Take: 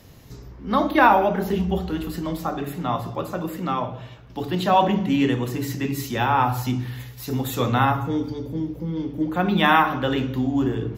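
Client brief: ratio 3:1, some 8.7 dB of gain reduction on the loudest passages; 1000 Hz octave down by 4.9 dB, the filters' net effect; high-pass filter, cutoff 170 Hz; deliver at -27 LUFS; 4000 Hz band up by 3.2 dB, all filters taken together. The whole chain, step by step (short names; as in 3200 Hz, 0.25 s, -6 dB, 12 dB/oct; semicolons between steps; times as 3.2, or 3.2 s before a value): HPF 170 Hz; bell 1000 Hz -6.5 dB; bell 4000 Hz +4.5 dB; compressor 3:1, threshold -26 dBFS; gain +3 dB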